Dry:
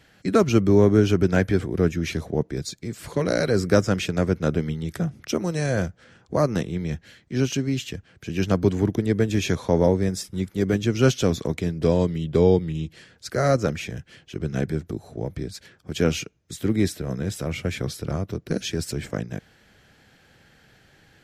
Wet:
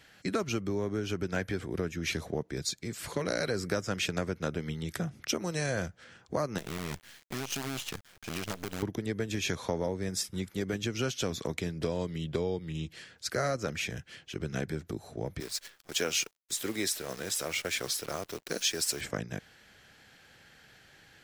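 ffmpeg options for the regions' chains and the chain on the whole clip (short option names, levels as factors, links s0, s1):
-filter_complex "[0:a]asettb=1/sr,asplit=3[s0][s1][s2];[s0]atrim=end=6.584[s3];[s1]atrim=start=6.58:end=8.83,asetpts=PTS-STARTPTS,afade=t=in:d=0.004:c=qsin,afade=t=out:st=2.246:d=0.004:c=qsin,aeval=exprs='if(lt(val(0),0),0.708*val(0),val(0))':c=same,acompressor=threshold=0.0398:ratio=20:attack=3.2:release=140:knee=1:detection=peak,acrusher=bits=6:dc=4:mix=0:aa=0.000001[s4];[s2]atrim=start=8.826[s5];[s3][s4]acrossfade=d=0.004:c1=hsin:c2=qsin[s6];[s6][s5]acrossfade=d=0.004:c1=qsin:c2=hsin,asettb=1/sr,asplit=3[s7][s8][s9];[s7]atrim=end=15.404[s10];[s8]atrim=start=15.4:end=19.01,asetpts=PTS-STARTPTS,afade=t=in:d=0.004:c=qsin,afade=t=out:st=3.606:d=0.004:c=qsin,bass=f=250:g=-15,treble=f=4000:g=5,acrusher=bits=8:dc=4:mix=0:aa=0.000001[s11];[s9]atrim=start=19.006[s12];[s10][s11]acrossfade=d=0.004:c1=hsin:c2=qsin[s13];[s13][s12]acrossfade=d=0.004:c1=qsin:c2=hsin,acompressor=threshold=0.0708:ratio=6,tiltshelf=f=680:g=-4,volume=0.708"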